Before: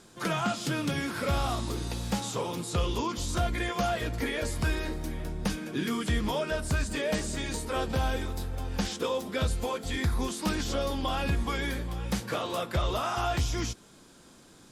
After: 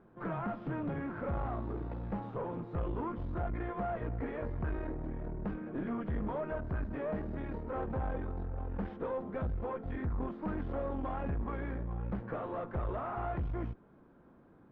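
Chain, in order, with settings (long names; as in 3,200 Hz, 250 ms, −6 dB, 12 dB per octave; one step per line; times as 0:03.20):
tube saturation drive 30 dB, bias 0.65
Bessel low-pass filter 1,100 Hz, order 4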